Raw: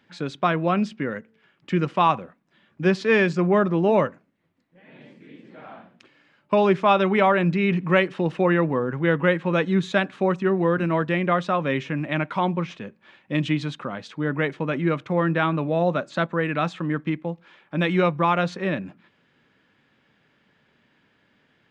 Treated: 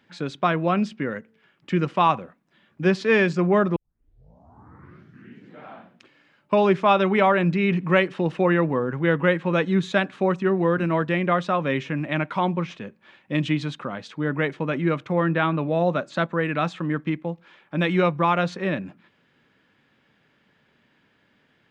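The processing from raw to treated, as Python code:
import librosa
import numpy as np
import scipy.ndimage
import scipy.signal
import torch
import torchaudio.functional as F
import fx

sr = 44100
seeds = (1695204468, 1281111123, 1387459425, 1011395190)

y = fx.lowpass(x, sr, hz=4900.0, slope=24, at=(15.12, 15.7))
y = fx.edit(y, sr, fx.tape_start(start_s=3.76, length_s=1.89), tone=tone)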